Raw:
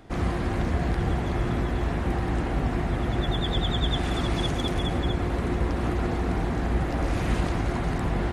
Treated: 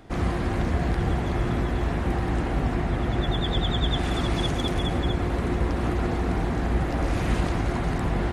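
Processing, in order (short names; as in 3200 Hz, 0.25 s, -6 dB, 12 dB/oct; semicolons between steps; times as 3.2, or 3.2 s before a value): 2.74–3.99 high shelf 8700 Hz -4.5 dB; gain +1 dB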